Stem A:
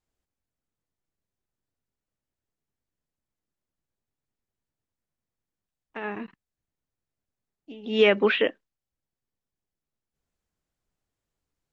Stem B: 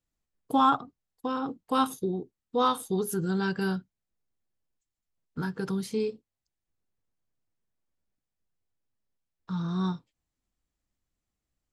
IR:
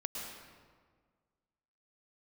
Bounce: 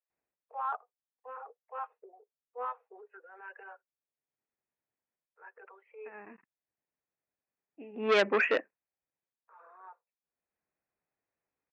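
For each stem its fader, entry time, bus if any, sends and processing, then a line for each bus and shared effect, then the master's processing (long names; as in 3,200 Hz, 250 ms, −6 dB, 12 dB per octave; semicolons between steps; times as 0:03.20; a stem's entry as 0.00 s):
+0.5 dB, 0.10 s, no send, high-pass filter 370 Hz 6 dB per octave; automatic ducking −15 dB, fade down 0.25 s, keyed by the second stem
−7.0 dB, 0.00 s, no send, Butterworth high-pass 450 Hz 72 dB per octave; reverb reduction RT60 1.3 s; transient designer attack −9 dB, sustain +4 dB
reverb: not used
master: Chebyshev low-pass with heavy ripple 2,600 Hz, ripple 3 dB; saturating transformer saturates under 1,900 Hz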